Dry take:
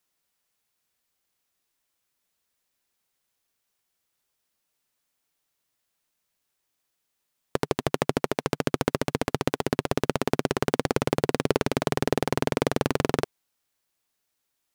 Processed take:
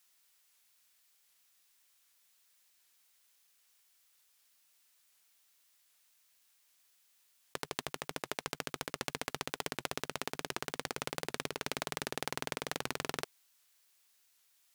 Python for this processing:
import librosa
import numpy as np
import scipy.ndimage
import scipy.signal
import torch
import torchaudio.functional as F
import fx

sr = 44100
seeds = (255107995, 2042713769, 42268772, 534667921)

y = fx.tilt_shelf(x, sr, db=-8.0, hz=820.0)
y = fx.over_compress(y, sr, threshold_db=-32.0, ratio=-1.0)
y = fx.record_warp(y, sr, rpm=78.0, depth_cents=160.0)
y = F.gain(torch.from_numpy(y), -6.0).numpy()